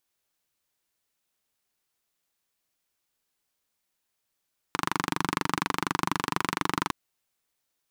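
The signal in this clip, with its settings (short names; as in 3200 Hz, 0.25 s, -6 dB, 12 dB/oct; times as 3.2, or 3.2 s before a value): single-cylinder engine model, steady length 2.16 s, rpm 2900, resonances 180/290/1000 Hz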